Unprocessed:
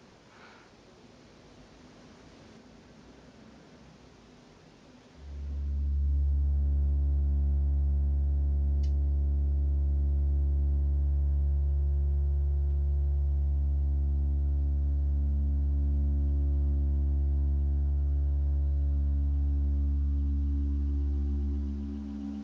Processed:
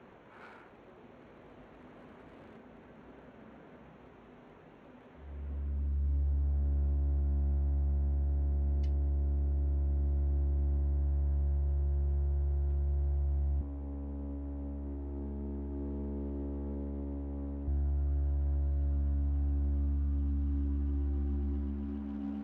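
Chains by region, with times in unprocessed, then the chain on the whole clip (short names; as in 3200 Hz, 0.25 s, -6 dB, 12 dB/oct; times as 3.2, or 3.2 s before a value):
13.61–17.68 resonant low shelf 190 Hz -8 dB, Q 3 + Doppler distortion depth 0.62 ms
whole clip: Wiener smoothing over 9 samples; tone controls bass -6 dB, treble -10 dB; gain +2.5 dB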